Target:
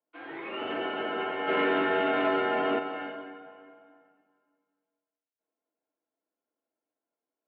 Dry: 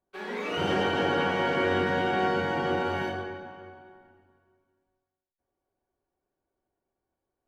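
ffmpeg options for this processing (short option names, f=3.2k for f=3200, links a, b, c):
-filter_complex "[0:a]flanger=delay=6:depth=7.8:regen=-88:speed=0.46:shape=sinusoidal,asplit=3[a][b][c];[a]afade=t=out:st=1.47:d=0.02[d];[b]aeval=exprs='0.112*sin(PI/2*1.58*val(0)/0.112)':c=same,afade=t=in:st=1.47:d=0.02,afade=t=out:st=2.78:d=0.02[e];[c]afade=t=in:st=2.78:d=0.02[f];[d][e][f]amix=inputs=3:normalize=0,highpass=f=380:t=q:w=0.5412,highpass=f=380:t=q:w=1.307,lowpass=f=3.3k:t=q:w=0.5176,lowpass=f=3.3k:t=q:w=0.7071,lowpass=f=3.3k:t=q:w=1.932,afreqshift=-86"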